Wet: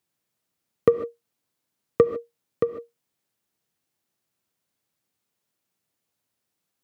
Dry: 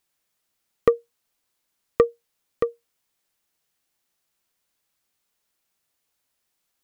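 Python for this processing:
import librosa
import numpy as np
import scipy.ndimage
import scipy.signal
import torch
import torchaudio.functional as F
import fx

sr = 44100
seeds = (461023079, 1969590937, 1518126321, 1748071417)

y = scipy.signal.sosfilt(scipy.signal.butter(4, 92.0, 'highpass', fs=sr, output='sos'), x)
y = fx.low_shelf(y, sr, hz=440.0, db=10.5)
y = fx.rev_gated(y, sr, seeds[0], gate_ms=170, shape='rising', drr_db=10.5)
y = F.gain(torch.from_numpy(y), -5.0).numpy()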